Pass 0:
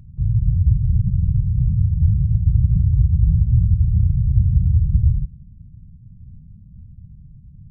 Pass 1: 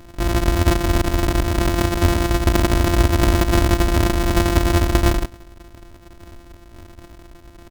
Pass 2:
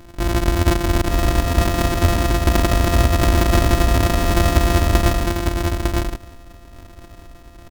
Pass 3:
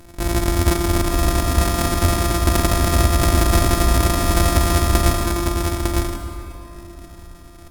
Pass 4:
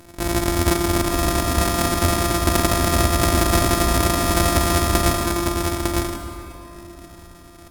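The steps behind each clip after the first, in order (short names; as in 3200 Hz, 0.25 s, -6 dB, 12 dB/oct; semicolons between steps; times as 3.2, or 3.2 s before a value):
sample sorter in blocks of 256 samples; comb 3.1 ms, depth 76%; gain -2 dB
echo 0.904 s -4 dB
bell 11000 Hz +8.5 dB 1.3 oct; notch 3000 Hz, Q 22; plate-style reverb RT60 3.5 s, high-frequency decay 0.55×, DRR 5.5 dB; gain -2 dB
low shelf 70 Hz -11 dB; gain +1 dB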